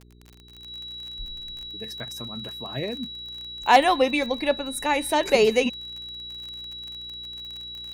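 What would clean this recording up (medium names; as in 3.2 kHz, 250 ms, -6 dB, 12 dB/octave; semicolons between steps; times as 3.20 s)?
clip repair -7.5 dBFS; de-click; de-hum 60 Hz, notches 7; band-stop 3.9 kHz, Q 30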